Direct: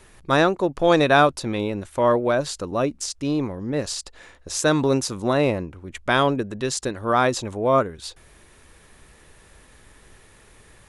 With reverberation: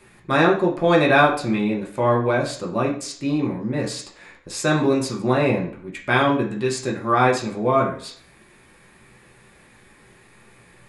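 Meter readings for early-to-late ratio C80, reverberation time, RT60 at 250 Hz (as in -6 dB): 12.5 dB, 0.50 s, 0.60 s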